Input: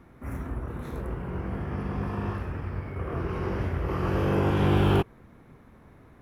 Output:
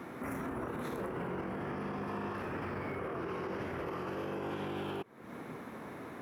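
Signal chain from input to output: HPF 230 Hz 12 dB/oct; compressor 16:1, threshold -41 dBFS, peak gain reduction 20.5 dB; limiter -42 dBFS, peak gain reduction 9.5 dB; gain +11.5 dB

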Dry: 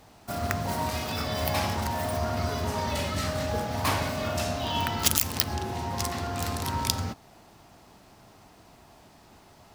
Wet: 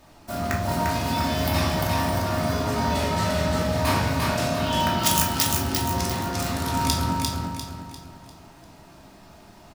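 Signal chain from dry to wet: feedback echo 0.348 s, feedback 39%, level -3 dB; shoebox room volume 510 m³, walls furnished, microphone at 2.7 m; gain -1.5 dB

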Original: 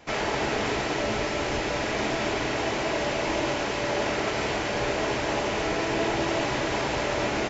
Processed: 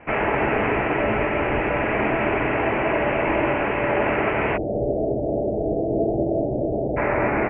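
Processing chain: steep low-pass 2700 Hz 72 dB/oct, from 4.56 s 710 Hz, from 6.96 s 2400 Hz; gain +6 dB

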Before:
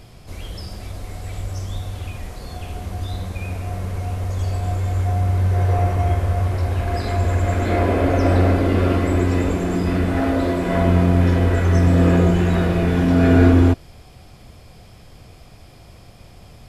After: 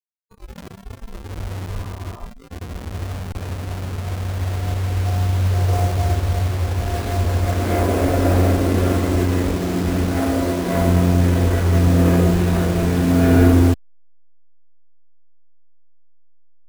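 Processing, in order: level-crossing sampler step -25 dBFS; spectral noise reduction 20 dB; spectral repair 1.76–2.24, 560–1400 Hz before

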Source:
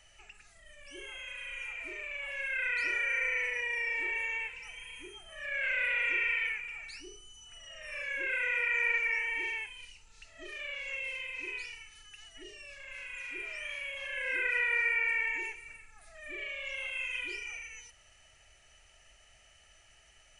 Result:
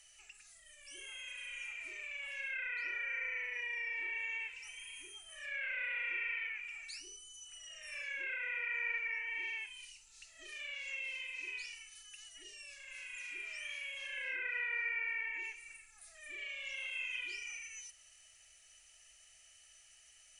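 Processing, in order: treble ducked by the level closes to 2200 Hz, closed at -29 dBFS; pre-emphasis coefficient 0.9; gain +5.5 dB

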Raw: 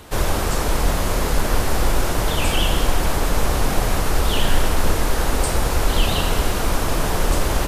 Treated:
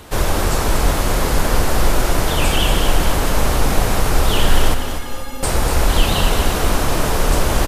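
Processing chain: 4.74–5.43 metallic resonator 250 Hz, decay 0.23 s, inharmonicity 0.03; feedback echo 0.242 s, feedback 48%, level -8 dB; gain +2.5 dB

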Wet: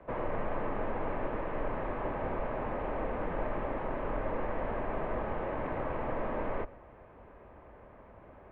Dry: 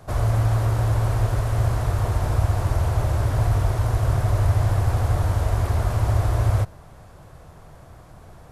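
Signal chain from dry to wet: notch 1500 Hz, Q 12; on a send at -22 dB: reverb RT60 0.35 s, pre-delay 70 ms; on the sum: mistuned SSB -97 Hz 150–2600 Hz; gain -3.5 dB

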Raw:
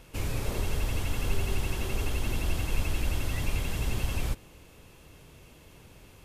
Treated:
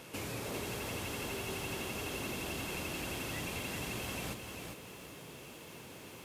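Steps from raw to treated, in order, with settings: HPF 170 Hz 12 dB/oct; compressor 2:1, threshold -49 dBFS, peak gain reduction 9 dB; lo-fi delay 0.397 s, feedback 35%, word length 11-bit, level -5.5 dB; gain +5 dB

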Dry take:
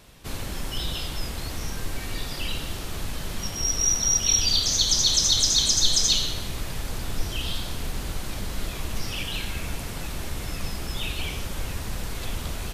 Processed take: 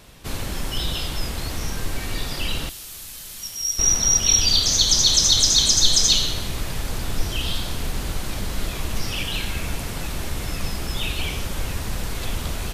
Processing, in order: 2.69–3.79 pre-emphasis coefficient 0.9; gain +4 dB

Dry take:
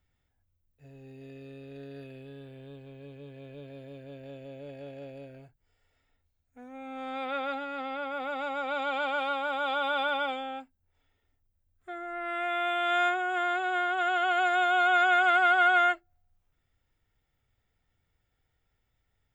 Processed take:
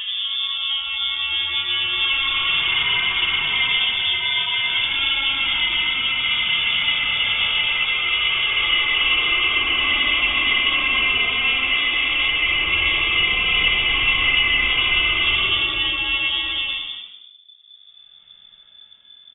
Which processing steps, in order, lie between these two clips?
octaver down 2 oct, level -4 dB; low shelf 170 Hz +10 dB; in parallel at +3 dB: compressor, threshold -37 dBFS, peak gain reduction 17 dB; on the sum: limiter -19.5 dBFS, peak gain reduction 8 dB; Paulstretch 4.2×, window 0.25 s, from 6.64; on a send: frequency-shifting echo 0.119 s, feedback 41%, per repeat -85 Hz, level -12 dB; on the sum: inverted band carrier 3500 Hz; gain +7.5 dB

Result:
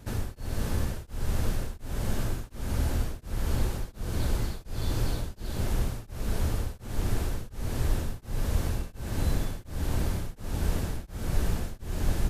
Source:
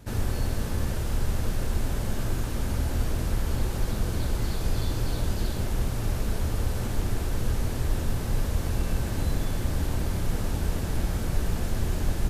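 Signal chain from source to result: beating tremolo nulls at 1.4 Hz

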